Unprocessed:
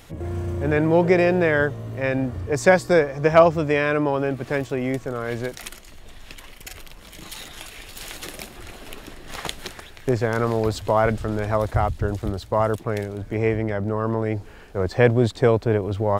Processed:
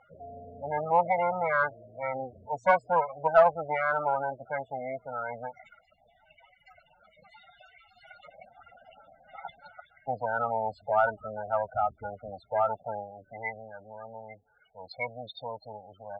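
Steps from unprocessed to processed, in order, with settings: comb filter that takes the minimum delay 1.4 ms; loudest bins only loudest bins 16; band-pass sweep 1.1 kHz -> 3 kHz, 12.97–13.78 s; in parallel at -5 dB: saturation -19 dBFS, distortion -14 dB

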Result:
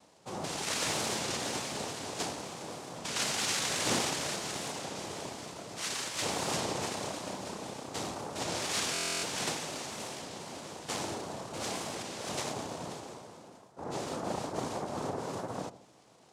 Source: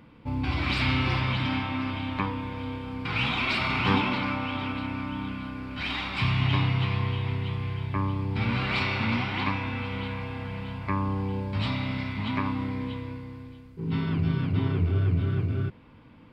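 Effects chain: bass shelf 360 Hz -7.5 dB; noise-vocoded speech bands 2; on a send: feedback echo behind a low-pass 72 ms, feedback 51%, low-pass 850 Hz, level -13.5 dB; on the sum: buffer glitch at 8.93 s, samples 1024, times 12; warped record 33 1/3 rpm, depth 100 cents; trim -4 dB

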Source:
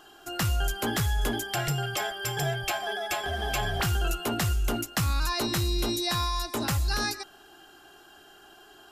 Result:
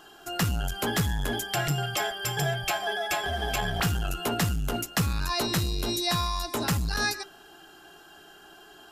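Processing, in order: on a send at -10.5 dB: reverberation RT60 0.20 s, pre-delay 3 ms; on the sum: transformer saturation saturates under 200 Hz; trim +1.5 dB

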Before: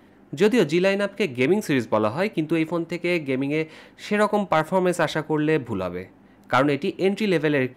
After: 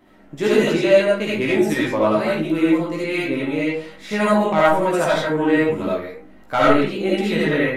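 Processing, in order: algorithmic reverb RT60 0.43 s, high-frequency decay 0.65×, pre-delay 30 ms, DRR -6 dB; chorus voices 6, 0.31 Hz, delay 16 ms, depth 3.3 ms

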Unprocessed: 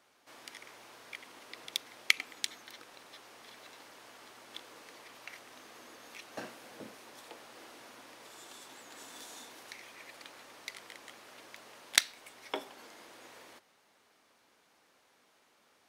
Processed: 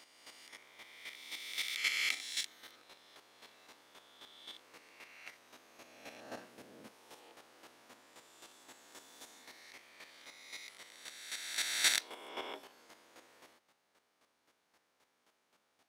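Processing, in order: reverse spectral sustain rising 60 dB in 2.25 s; square tremolo 3.8 Hz, depth 60%, duty 15%; trim -5.5 dB

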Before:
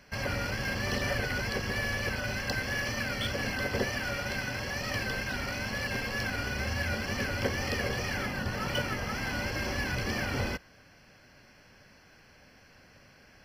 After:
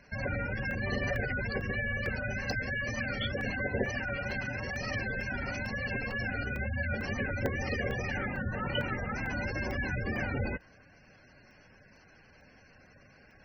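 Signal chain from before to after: spectral gate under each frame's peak -15 dB strong; crackling interface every 0.45 s, samples 64, zero, from 0.71 s

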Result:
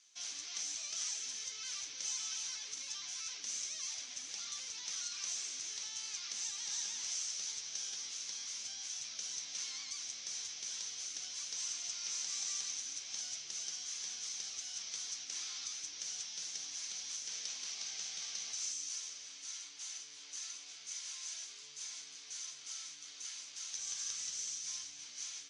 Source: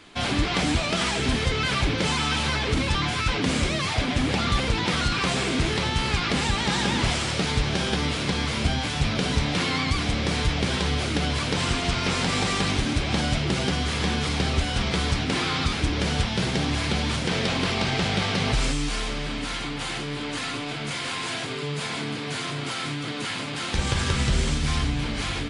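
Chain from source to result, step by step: band-pass filter 6.1 kHz, Q 9.5; trim +3.5 dB

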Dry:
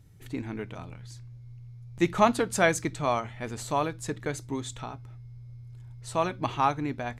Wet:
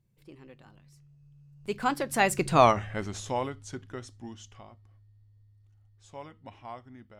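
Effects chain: Doppler pass-by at 2.65 s, 56 m/s, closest 10 m; trim +8 dB

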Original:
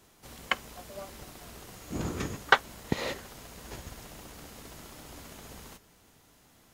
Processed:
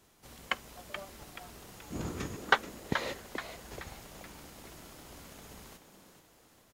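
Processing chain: frequency-shifting echo 429 ms, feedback 44%, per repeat +130 Hz, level -9 dB; trim -4 dB

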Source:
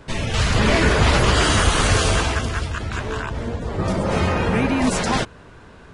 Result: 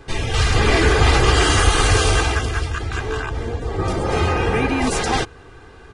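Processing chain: comb 2.5 ms, depth 58%

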